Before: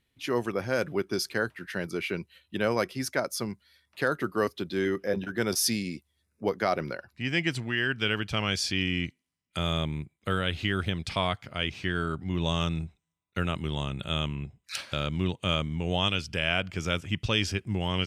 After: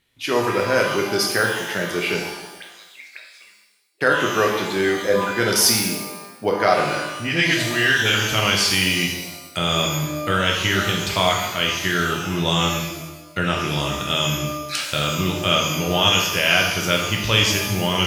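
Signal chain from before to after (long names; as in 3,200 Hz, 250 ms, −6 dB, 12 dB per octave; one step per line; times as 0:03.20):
low-shelf EQ 330 Hz −7 dB
0:02.19–0:04.01: envelope filter 300–3,800 Hz, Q 18, up, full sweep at −28 dBFS
0:07.10–0:08.14: all-pass dispersion highs, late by 49 ms, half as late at 870 Hz
reverb with rising layers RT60 1 s, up +12 semitones, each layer −8 dB, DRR −0.5 dB
level +8 dB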